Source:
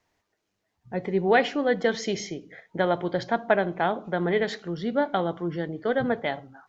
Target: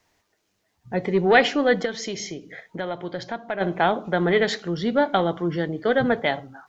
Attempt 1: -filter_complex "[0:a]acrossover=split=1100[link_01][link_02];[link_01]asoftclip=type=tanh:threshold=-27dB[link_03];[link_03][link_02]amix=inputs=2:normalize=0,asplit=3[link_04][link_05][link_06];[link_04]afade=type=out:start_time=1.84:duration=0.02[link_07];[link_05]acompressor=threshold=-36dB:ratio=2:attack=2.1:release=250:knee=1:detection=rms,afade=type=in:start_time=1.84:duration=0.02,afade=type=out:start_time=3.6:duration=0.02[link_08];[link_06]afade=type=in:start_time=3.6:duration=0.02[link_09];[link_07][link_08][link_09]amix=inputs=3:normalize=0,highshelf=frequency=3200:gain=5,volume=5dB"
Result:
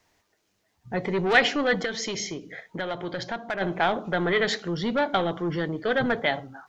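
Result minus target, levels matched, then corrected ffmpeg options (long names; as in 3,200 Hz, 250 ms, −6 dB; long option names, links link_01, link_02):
soft clipping: distortion +12 dB
-filter_complex "[0:a]acrossover=split=1100[link_01][link_02];[link_01]asoftclip=type=tanh:threshold=-15.5dB[link_03];[link_03][link_02]amix=inputs=2:normalize=0,asplit=3[link_04][link_05][link_06];[link_04]afade=type=out:start_time=1.84:duration=0.02[link_07];[link_05]acompressor=threshold=-36dB:ratio=2:attack=2.1:release=250:knee=1:detection=rms,afade=type=in:start_time=1.84:duration=0.02,afade=type=out:start_time=3.6:duration=0.02[link_08];[link_06]afade=type=in:start_time=3.6:duration=0.02[link_09];[link_07][link_08][link_09]amix=inputs=3:normalize=0,highshelf=frequency=3200:gain=5,volume=5dB"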